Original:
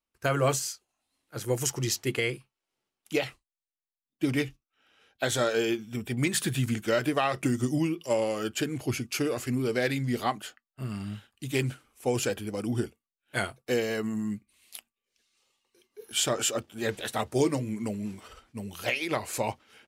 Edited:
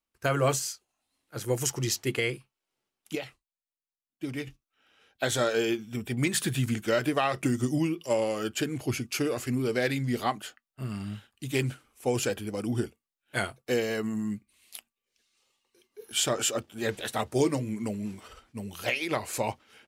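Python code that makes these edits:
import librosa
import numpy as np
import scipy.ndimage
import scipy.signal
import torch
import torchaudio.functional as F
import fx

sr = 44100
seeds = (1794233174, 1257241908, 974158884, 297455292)

y = fx.edit(x, sr, fx.clip_gain(start_s=3.15, length_s=1.32, db=-7.5), tone=tone)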